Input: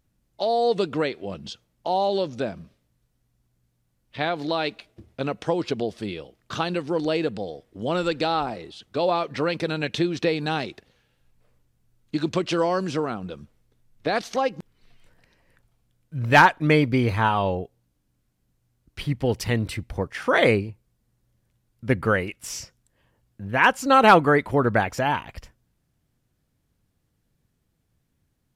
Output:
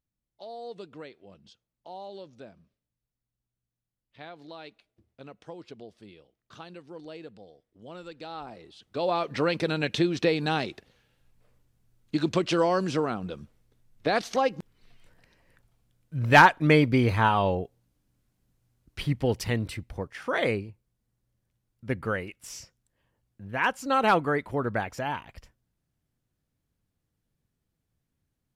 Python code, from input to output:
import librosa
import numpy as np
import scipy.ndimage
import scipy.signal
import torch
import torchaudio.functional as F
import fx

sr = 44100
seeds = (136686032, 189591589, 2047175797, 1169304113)

y = fx.gain(x, sr, db=fx.line((8.16, -18.5), (8.56, -11.5), (9.34, -1.0), (19.05, -1.0), (20.17, -8.0)))